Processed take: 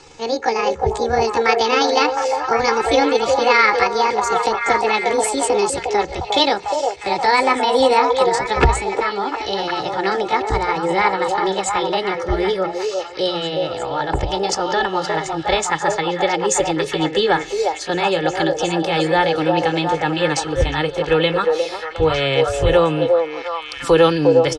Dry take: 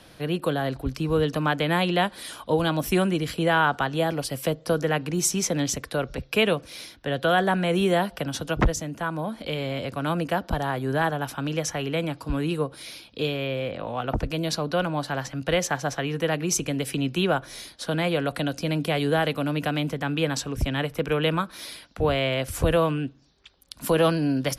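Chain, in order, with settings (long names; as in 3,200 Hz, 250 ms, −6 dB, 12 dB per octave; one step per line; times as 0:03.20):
pitch glide at a constant tempo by +7.5 semitones ending unshifted
Butterworth low-pass 8,400 Hz 36 dB per octave
mains-hum notches 60/120/180 Hz
comb filter 2.3 ms, depth 67%
echo through a band-pass that steps 356 ms, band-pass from 590 Hz, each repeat 0.7 octaves, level 0 dB
level +6 dB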